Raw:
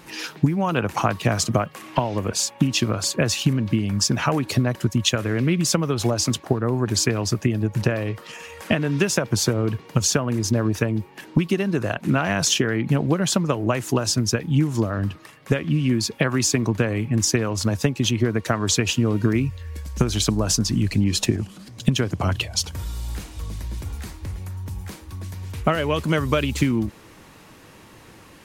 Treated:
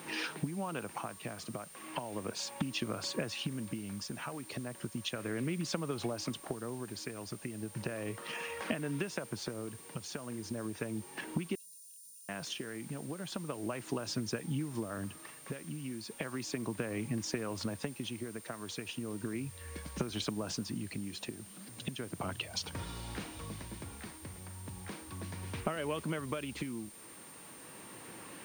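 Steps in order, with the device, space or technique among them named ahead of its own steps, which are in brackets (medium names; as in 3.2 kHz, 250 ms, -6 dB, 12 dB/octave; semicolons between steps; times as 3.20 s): medium wave at night (band-pass 160–3800 Hz; compression 6:1, threshold -32 dBFS, peak gain reduction 16.5 dB; tremolo 0.35 Hz, depth 53%; whistle 9 kHz -52 dBFS; white noise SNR 18 dB); 11.55–12.29 s: inverse Chebyshev high-pass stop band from 2.1 kHz, stop band 50 dB; trim -1 dB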